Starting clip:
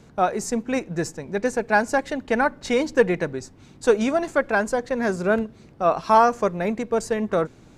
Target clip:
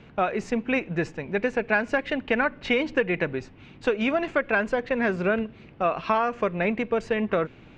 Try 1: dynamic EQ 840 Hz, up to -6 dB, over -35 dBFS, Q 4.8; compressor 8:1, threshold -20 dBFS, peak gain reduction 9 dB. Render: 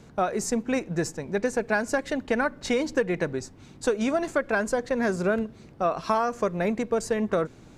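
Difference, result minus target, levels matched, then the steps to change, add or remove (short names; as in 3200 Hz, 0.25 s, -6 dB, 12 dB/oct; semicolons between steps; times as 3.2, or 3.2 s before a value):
2000 Hz band -3.0 dB
add after compressor: synth low-pass 2700 Hz, resonance Q 3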